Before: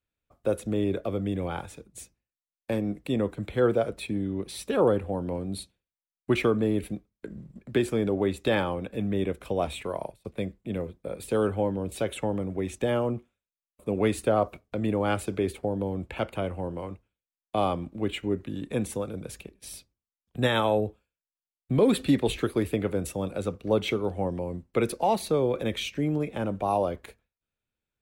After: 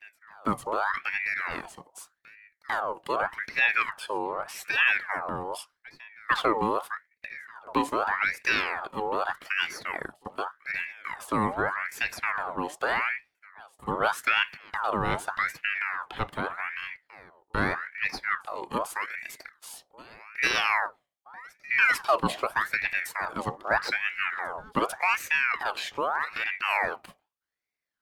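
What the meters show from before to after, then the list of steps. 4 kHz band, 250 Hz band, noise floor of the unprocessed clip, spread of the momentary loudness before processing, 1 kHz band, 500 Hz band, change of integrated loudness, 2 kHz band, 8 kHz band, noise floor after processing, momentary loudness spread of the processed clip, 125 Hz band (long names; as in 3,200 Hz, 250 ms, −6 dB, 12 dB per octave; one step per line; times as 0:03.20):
+2.5 dB, −9.5 dB, below −85 dBFS, 14 LU, +5.0 dB, −8.0 dB, +0.5 dB, +13.0 dB, −0.5 dB, −80 dBFS, 16 LU, −11.0 dB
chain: backwards echo 447 ms −23.5 dB
ring modulator whose carrier an LFO sweeps 1,400 Hz, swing 55%, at 0.83 Hz
level +1.5 dB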